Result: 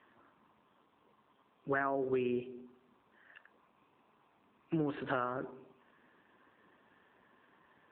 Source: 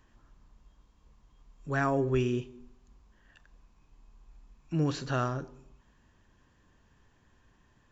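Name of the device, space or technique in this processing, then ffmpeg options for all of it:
voicemail: -af "highpass=310,lowpass=2800,acompressor=threshold=-36dB:ratio=8,volume=7dB" -ar 8000 -c:a libopencore_amrnb -b:a 7400

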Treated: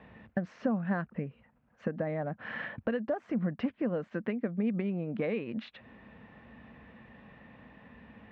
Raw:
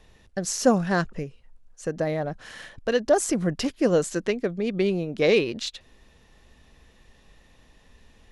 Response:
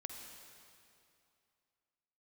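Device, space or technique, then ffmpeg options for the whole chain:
bass amplifier: -af "acompressor=threshold=-37dB:ratio=5,highpass=frequency=73:width=0.5412,highpass=frequency=73:width=1.3066,equalizer=frequency=77:width_type=q:width=4:gain=-9,equalizer=frequency=220:width_type=q:width=4:gain=8,equalizer=frequency=380:width_type=q:width=4:gain=-7,lowpass=frequency=2300:width=0.5412,lowpass=frequency=2300:width=1.3066,volume=6dB"

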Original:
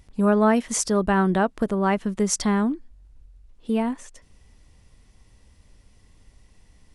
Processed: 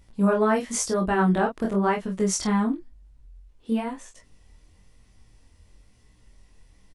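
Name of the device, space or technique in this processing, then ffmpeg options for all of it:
double-tracked vocal: -filter_complex "[0:a]asplit=2[link_01][link_02];[link_02]adelay=26,volume=-5dB[link_03];[link_01][link_03]amix=inputs=2:normalize=0,flanger=delay=16.5:depth=7.5:speed=0.98"

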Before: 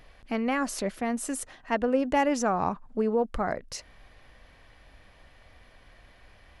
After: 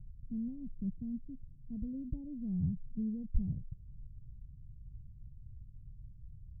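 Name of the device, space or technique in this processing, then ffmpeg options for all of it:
the neighbour's flat through the wall: -af "lowpass=frequency=150:width=0.5412,lowpass=frequency=150:width=1.3066,equalizer=frequency=130:width_type=o:width=0.97:gain=7,volume=5.5dB"

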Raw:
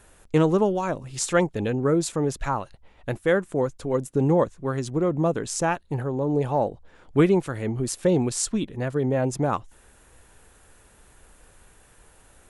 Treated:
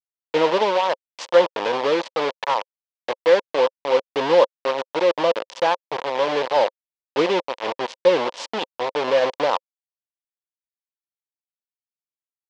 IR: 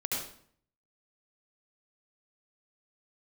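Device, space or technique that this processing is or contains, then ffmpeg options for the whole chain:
hand-held game console: -af "acrusher=bits=3:mix=0:aa=0.000001,highpass=420,equalizer=frequency=530:width_type=q:width=4:gain=10,equalizer=frequency=950:width_type=q:width=4:gain=9,equalizer=frequency=1400:width_type=q:width=4:gain=-3,equalizer=frequency=3100:width_type=q:width=4:gain=3,lowpass=frequency=4800:width=0.5412,lowpass=frequency=4800:width=1.3066"

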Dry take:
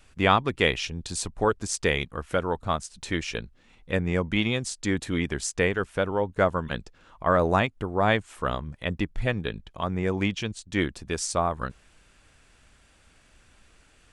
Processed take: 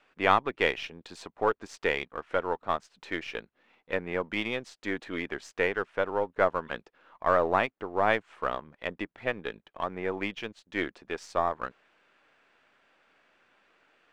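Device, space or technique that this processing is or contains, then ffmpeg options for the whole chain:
crystal radio: -af "highpass=380,lowpass=2500,aeval=exprs='if(lt(val(0),0),0.708*val(0),val(0))':channel_layout=same"

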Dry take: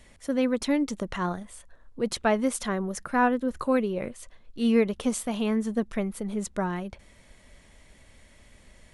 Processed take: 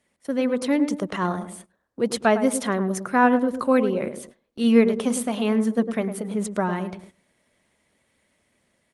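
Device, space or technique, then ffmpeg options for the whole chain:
video call: -filter_complex "[0:a]asettb=1/sr,asplit=3[link_01][link_02][link_03];[link_01]atrim=end=4.624[link_04];[link_02]atrim=start=4.62:end=6.35,asetpts=PTS-STARTPTS,afade=type=in:duration=0.004:curve=qsin,afade=type=out:start_time=1.726:duration=0.004:curve=qsin,bandreject=frequency=50:width_type=h:width=6,bandreject=frequency=100:width_type=h:width=6,bandreject=frequency=150:width_type=h:width=6,bandreject=frequency=200:width_type=h:width=6,bandreject=frequency=250:width_type=h:width=6,bandreject=frequency=300:width_type=h:width=6,bandreject=frequency=350:width_type=h:width=6,bandreject=frequency=400:width_type=h:width=6,bandreject=frequency=450:width_type=h:width=6,bandreject=frequency=500:width_type=h:width=6[link_05];[link_03]atrim=start=6.346[link_06];[link_04][link_05]acrossfade=duration=0.004:curve1=hsin:curve2=qsin[link_07];[link_07][link_06]acrossfade=duration=0.004:curve1=qsin:curve2=hsin,highpass=150,asplit=2[link_08][link_09];[link_09]adelay=105,lowpass=frequency=1000:poles=1,volume=-8dB,asplit=2[link_10][link_11];[link_11]adelay=105,lowpass=frequency=1000:poles=1,volume=0.39,asplit=2[link_12][link_13];[link_13]adelay=105,lowpass=frequency=1000:poles=1,volume=0.39,asplit=2[link_14][link_15];[link_15]adelay=105,lowpass=frequency=1000:poles=1,volume=0.39[link_16];[link_08][link_10][link_12][link_14][link_16]amix=inputs=5:normalize=0,dynaudnorm=framelen=220:gausssize=7:maxgain=3.5dB,agate=range=-13dB:threshold=-45dB:ratio=16:detection=peak,volume=1.5dB" -ar 48000 -c:a libopus -b:a 32k

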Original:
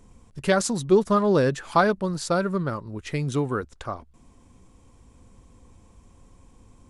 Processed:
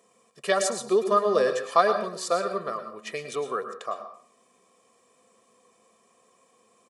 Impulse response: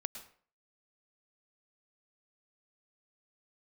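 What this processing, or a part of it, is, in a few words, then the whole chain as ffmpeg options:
microphone above a desk: -filter_complex "[0:a]highpass=frequency=280:width=0.5412,highpass=frequency=280:width=1.3066,lowshelf=frequency=67:gain=6,bandreject=frequency=560:width=12,aecho=1:1:1.7:0.79[link_01];[1:a]atrim=start_sample=2205[link_02];[link_01][link_02]afir=irnorm=-1:irlink=0,volume=-1dB"

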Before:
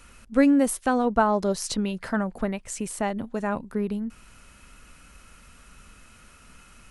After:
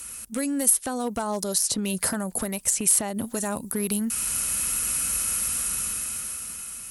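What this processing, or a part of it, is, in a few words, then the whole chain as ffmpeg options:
FM broadcast chain: -filter_complex "[0:a]highpass=56,dynaudnorm=framelen=220:gausssize=11:maxgain=12dB,acrossover=split=1100|4700[link_01][link_02][link_03];[link_01]acompressor=threshold=-25dB:ratio=4[link_04];[link_02]acompressor=threshold=-40dB:ratio=4[link_05];[link_03]acompressor=threshold=-41dB:ratio=4[link_06];[link_04][link_05][link_06]amix=inputs=3:normalize=0,aemphasis=mode=production:type=50fm,alimiter=limit=-18.5dB:level=0:latency=1:release=322,asoftclip=type=hard:threshold=-22dB,lowpass=frequency=15000:width=0.5412,lowpass=frequency=15000:width=1.3066,aemphasis=mode=production:type=50fm,volume=1.5dB"

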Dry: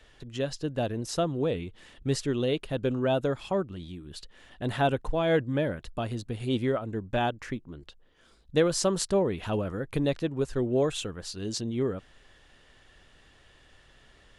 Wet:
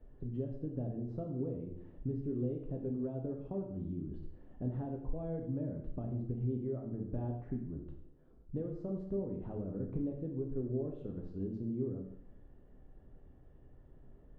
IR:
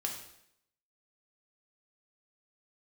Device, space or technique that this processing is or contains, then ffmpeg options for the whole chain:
television next door: -filter_complex "[0:a]acompressor=threshold=-37dB:ratio=5,lowpass=390[link_01];[1:a]atrim=start_sample=2205[link_02];[link_01][link_02]afir=irnorm=-1:irlink=0,volume=2dB"

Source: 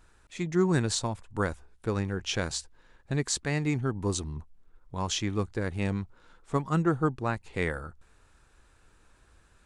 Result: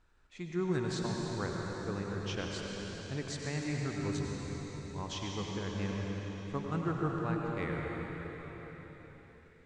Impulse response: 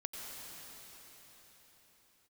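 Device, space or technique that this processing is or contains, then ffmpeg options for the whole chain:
cathedral: -filter_complex "[0:a]lowpass=5500[link_01];[1:a]atrim=start_sample=2205[link_02];[link_01][link_02]afir=irnorm=-1:irlink=0,volume=-6dB"

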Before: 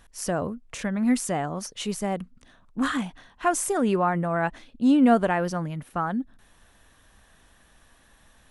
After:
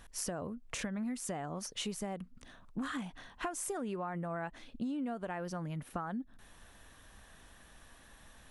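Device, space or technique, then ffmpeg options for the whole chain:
serial compression, leveller first: -af "acompressor=threshold=-23dB:ratio=2.5,acompressor=threshold=-36dB:ratio=6"

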